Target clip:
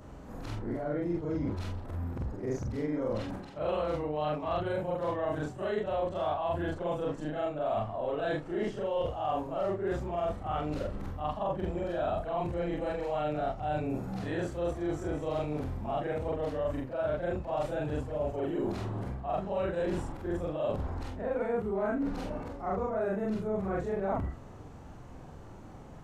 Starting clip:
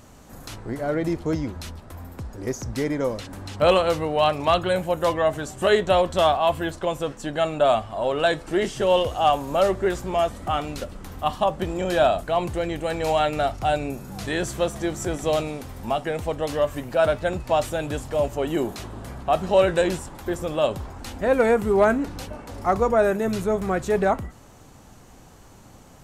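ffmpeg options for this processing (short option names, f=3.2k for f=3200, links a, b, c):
-af "afftfilt=real='re':imag='-im':win_size=4096:overlap=0.75,lowpass=f=1.1k:p=1,areverse,acompressor=threshold=-36dB:ratio=5,areverse,volume=6dB"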